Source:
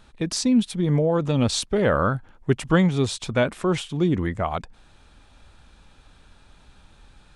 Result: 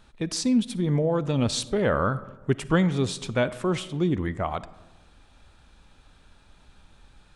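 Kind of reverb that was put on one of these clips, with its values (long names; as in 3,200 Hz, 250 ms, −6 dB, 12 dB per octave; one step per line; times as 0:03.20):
comb and all-pass reverb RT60 1.2 s, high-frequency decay 0.4×, pre-delay 15 ms, DRR 16 dB
level −3 dB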